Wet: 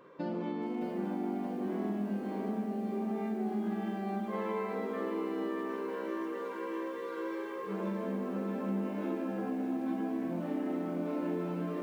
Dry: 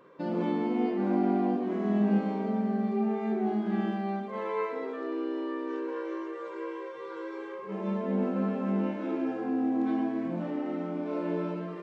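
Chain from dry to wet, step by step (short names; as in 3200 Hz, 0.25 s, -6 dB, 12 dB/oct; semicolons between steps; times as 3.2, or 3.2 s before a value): compressor 12:1, threshold -32 dBFS, peak gain reduction 12 dB; lo-fi delay 0.62 s, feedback 55%, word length 10-bit, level -6.5 dB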